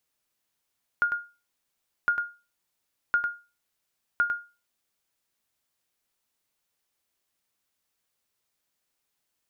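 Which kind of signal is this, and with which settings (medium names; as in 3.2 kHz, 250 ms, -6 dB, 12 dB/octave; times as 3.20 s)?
sonar ping 1.42 kHz, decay 0.30 s, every 1.06 s, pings 4, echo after 0.10 s, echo -7 dB -15.5 dBFS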